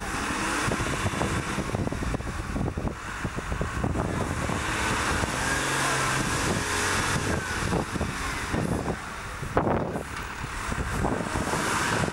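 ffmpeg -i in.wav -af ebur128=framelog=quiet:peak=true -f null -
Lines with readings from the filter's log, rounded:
Integrated loudness:
  I:         -27.8 LUFS
  Threshold: -37.8 LUFS
Loudness range:
  LRA:         4.3 LU
  Threshold: -47.7 LUFS
  LRA low:   -29.9 LUFS
  LRA high:  -25.6 LUFS
True peak:
  Peak:       -8.0 dBFS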